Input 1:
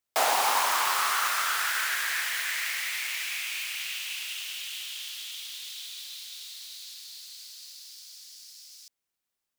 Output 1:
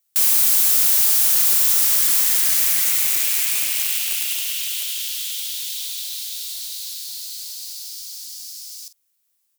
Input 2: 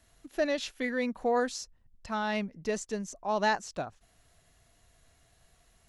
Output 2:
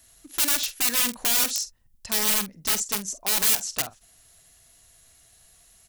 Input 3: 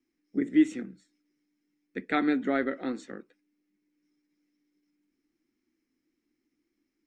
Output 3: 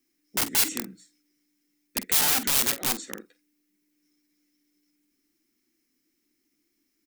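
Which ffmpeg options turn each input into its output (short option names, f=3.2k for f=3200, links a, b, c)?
-filter_complex "[0:a]aeval=exprs='(mod(22.4*val(0)+1,2)-1)/22.4':c=same,crystalizer=i=4:c=0,asplit=2[a][b];[b]adelay=47,volume=-13.5dB[c];[a][c]amix=inputs=2:normalize=0"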